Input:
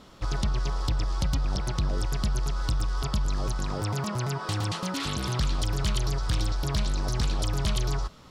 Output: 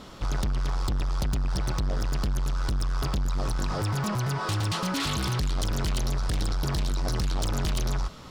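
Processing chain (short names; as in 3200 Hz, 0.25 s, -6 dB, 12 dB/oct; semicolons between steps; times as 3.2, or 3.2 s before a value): soft clip -30 dBFS, distortion -10 dB; gain +6.5 dB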